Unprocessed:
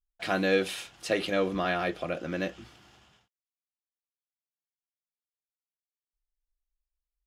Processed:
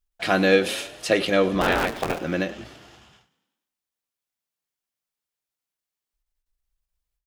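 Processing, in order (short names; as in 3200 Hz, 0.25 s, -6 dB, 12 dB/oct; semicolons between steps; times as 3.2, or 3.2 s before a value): 1.6–2.2 cycle switcher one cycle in 3, inverted; frequency-shifting echo 97 ms, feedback 61%, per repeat +30 Hz, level -19 dB; ending taper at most 150 dB/s; gain +7.5 dB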